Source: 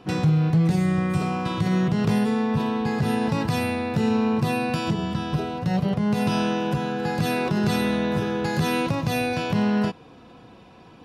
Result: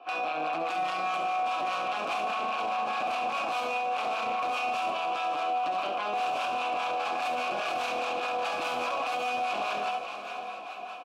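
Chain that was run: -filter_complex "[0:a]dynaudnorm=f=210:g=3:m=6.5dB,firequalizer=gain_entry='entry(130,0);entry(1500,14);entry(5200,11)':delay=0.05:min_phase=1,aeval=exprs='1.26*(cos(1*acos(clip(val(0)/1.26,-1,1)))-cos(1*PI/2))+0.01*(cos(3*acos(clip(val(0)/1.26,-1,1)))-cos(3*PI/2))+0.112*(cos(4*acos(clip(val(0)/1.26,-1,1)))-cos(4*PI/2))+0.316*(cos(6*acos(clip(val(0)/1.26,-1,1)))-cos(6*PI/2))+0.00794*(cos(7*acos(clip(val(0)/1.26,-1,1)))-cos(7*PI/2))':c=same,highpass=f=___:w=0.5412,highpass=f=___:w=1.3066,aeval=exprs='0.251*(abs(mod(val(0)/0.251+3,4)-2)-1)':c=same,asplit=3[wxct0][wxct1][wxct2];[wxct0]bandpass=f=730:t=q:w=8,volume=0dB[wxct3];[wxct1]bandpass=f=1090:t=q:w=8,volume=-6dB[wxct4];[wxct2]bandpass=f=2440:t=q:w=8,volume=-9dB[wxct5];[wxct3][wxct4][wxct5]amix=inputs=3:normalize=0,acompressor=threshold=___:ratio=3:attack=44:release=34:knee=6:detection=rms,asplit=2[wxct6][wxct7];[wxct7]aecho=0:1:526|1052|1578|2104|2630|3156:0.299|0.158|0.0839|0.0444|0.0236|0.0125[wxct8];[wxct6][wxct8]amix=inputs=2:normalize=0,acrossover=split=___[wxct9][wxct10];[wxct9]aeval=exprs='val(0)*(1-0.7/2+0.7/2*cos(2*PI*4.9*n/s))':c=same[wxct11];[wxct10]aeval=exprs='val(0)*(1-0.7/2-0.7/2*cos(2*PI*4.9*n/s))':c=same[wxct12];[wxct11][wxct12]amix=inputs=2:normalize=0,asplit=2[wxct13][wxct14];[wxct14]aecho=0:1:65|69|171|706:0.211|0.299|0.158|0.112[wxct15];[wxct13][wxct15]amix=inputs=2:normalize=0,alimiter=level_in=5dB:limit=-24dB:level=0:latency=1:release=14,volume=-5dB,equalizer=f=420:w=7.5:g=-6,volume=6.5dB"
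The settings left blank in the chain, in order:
260, 260, -34dB, 740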